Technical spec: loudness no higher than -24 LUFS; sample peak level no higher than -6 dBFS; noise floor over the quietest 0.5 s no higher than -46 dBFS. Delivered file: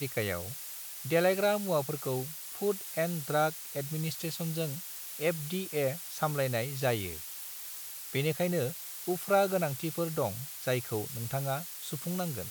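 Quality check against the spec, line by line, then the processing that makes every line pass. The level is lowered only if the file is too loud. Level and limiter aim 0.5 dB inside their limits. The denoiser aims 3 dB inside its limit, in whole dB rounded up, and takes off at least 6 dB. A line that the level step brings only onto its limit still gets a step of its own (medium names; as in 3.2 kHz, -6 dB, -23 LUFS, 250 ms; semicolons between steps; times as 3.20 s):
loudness -32.5 LUFS: pass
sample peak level -14.5 dBFS: pass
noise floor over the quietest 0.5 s -43 dBFS: fail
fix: noise reduction 6 dB, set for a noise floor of -43 dBFS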